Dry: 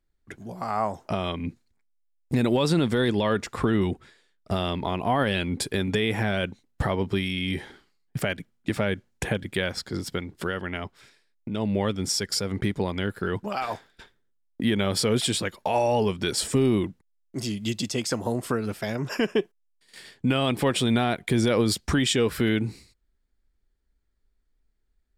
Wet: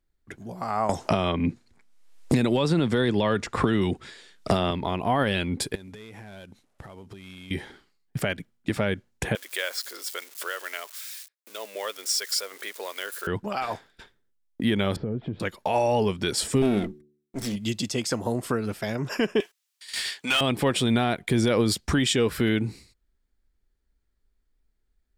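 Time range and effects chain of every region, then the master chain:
0.89–4.71 s: low-pass 9.9 kHz + three bands compressed up and down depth 100%
5.75–7.51 s: CVSD coder 64 kbps + compression 16:1, threshold -39 dBFS
9.35–13.27 s: zero-crossing glitches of -30.5 dBFS + high-pass 540 Hz 24 dB/octave + peaking EQ 810 Hz -7.5 dB 0.39 oct
14.96–15.40 s: Bessel low-pass 1.5 kHz, order 4 + tilt shelf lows +9.5 dB, about 650 Hz + compression 5:1, threshold -27 dBFS
16.62–17.56 s: comb filter that takes the minimum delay 0.53 ms + comb 4.4 ms, depth 34% + de-hum 73.87 Hz, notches 6
19.40–20.41 s: high-pass 1.4 kHz 6 dB/octave + treble shelf 2.9 kHz +11 dB + overdrive pedal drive 21 dB, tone 3.9 kHz, clips at -14.5 dBFS
whole clip: none

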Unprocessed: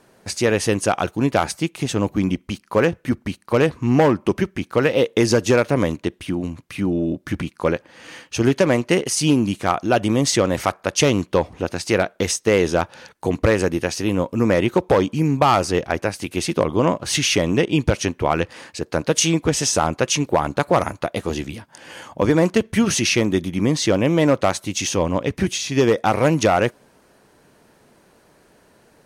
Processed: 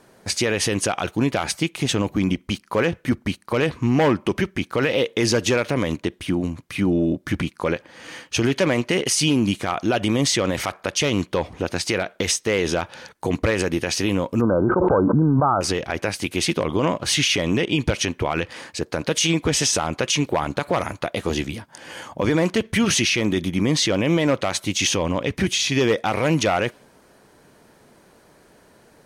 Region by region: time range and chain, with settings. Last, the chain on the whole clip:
14.41–15.61 s: brick-wall FIR low-pass 1.6 kHz + level flattener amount 100%
whole clip: band-stop 2.7 kHz, Q 24; dynamic bell 2.8 kHz, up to +7 dB, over -38 dBFS, Q 1; peak limiter -12 dBFS; trim +1.5 dB

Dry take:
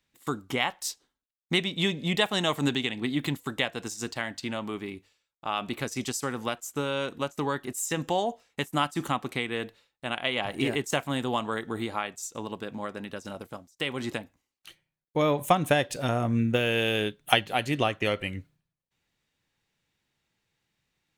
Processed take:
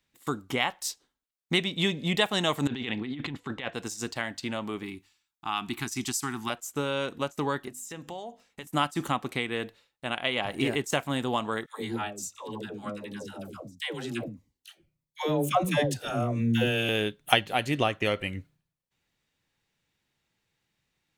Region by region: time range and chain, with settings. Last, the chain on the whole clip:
2.67–3.74 s: low-pass 3.6 kHz + band-stop 610 Hz, Q 9.2 + compressor with a negative ratio -34 dBFS
4.83–6.50 s: Chebyshev band-stop 350–810 Hz + treble shelf 4.8 kHz +5 dB
7.68–8.67 s: compression 2:1, threshold -45 dBFS + hum notches 50/100/150/200/250/300 Hz
11.66–16.89 s: phase dispersion lows, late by 143 ms, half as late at 510 Hz + Shepard-style phaser falling 1.5 Hz
whole clip: none

